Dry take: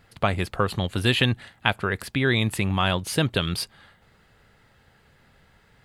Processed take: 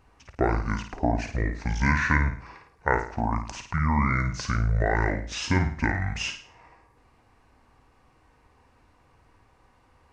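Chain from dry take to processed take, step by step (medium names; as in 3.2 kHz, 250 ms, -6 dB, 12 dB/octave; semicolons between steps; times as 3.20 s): flutter echo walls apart 5.3 m, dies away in 0.26 s; speed mistake 78 rpm record played at 45 rpm; trim -2.5 dB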